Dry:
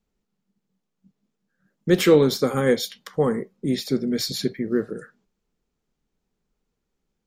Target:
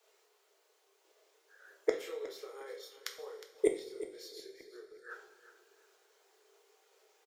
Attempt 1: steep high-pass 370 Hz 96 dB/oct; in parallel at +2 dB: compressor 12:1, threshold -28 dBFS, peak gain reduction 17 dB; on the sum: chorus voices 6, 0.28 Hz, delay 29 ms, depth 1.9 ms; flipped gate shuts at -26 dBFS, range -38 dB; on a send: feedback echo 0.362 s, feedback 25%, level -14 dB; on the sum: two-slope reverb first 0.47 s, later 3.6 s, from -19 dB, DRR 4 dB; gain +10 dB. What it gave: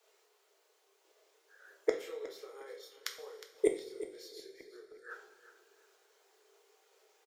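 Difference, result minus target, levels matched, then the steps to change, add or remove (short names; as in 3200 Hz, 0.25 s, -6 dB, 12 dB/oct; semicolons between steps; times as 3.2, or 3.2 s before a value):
compressor: peak gain reduction +7 dB
change: compressor 12:1, threshold -20.5 dBFS, peak gain reduction 10 dB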